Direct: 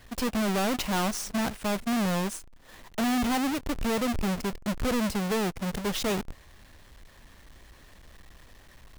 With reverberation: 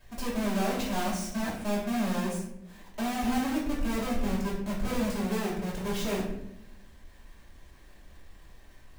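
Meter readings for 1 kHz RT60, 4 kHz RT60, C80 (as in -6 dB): 0.65 s, 0.45 s, 7.0 dB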